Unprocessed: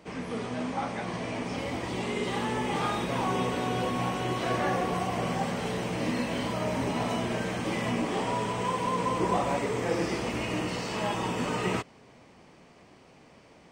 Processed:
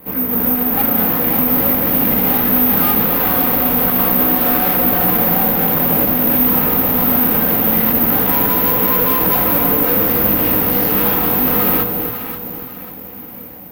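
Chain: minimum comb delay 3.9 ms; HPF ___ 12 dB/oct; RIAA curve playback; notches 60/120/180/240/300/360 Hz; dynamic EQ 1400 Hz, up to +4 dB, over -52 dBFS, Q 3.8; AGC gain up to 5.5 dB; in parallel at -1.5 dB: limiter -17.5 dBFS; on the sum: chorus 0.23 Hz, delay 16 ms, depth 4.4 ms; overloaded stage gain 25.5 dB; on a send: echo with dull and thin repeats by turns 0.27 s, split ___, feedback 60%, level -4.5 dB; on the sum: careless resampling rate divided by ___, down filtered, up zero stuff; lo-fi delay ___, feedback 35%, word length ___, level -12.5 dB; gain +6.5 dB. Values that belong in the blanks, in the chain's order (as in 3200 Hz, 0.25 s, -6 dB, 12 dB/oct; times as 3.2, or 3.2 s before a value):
110 Hz, 800 Hz, 3×, 0.264 s, 7-bit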